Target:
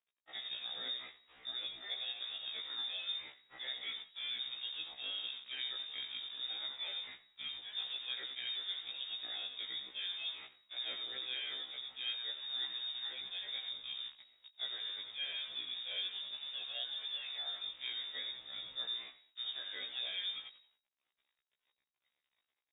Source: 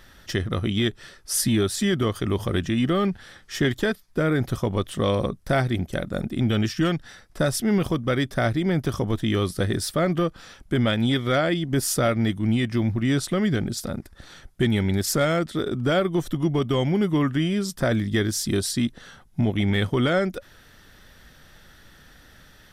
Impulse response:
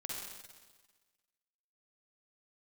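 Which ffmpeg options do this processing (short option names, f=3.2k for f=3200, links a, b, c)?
-filter_complex "[0:a]bandreject=f=60:t=h:w=6,bandreject=f=120:t=h:w=6,bandreject=f=180:t=h:w=6,bandreject=f=240:t=h:w=6,agate=range=-23dB:threshold=-42dB:ratio=16:detection=peak,areverse,acompressor=threshold=-34dB:ratio=5,areverse,asplit=5[a][b][c][d][e];[b]adelay=88,afreqshift=35,volume=-9dB[f];[c]adelay=176,afreqshift=70,volume=-19.2dB[g];[d]adelay=264,afreqshift=105,volume=-29.3dB[h];[e]adelay=352,afreqshift=140,volume=-39.5dB[i];[a][f][g][h][i]amix=inputs=5:normalize=0,acrusher=bits=8:dc=4:mix=0:aa=0.000001,lowpass=f=3.2k:t=q:w=0.5098,lowpass=f=3.2k:t=q:w=0.6013,lowpass=f=3.2k:t=q:w=0.9,lowpass=f=3.2k:t=q:w=2.563,afreqshift=-3800,afftfilt=real='re*1.73*eq(mod(b,3),0)':imag='im*1.73*eq(mod(b,3),0)':win_size=2048:overlap=0.75,volume=-4.5dB"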